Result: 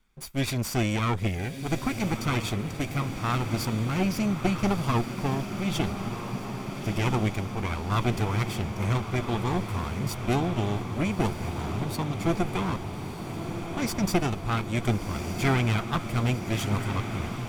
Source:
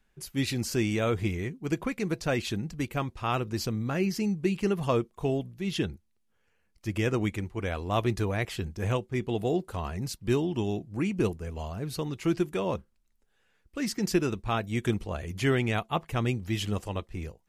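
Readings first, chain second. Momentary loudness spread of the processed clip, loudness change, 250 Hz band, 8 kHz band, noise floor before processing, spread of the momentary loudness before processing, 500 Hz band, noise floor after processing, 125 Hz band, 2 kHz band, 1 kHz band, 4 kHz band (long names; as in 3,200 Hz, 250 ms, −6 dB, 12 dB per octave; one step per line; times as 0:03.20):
6 LU, +2.0 dB, +1.5 dB, +3.0 dB, −71 dBFS, 7 LU, −2.0 dB, −37 dBFS, +4.5 dB, +2.5 dB, +4.5 dB, +2.5 dB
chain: lower of the sound and its delayed copy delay 0.86 ms
feedback delay with all-pass diffusion 1,305 ms, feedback 72%, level −8 dB
level +2.5 dB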